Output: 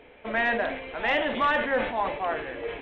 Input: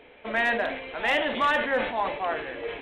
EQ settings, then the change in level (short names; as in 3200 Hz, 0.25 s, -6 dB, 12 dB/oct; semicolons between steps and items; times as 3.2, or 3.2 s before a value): Gaussian blur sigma 1.7 samples; low shelf 130 Hz +5 dB; 0.0 dB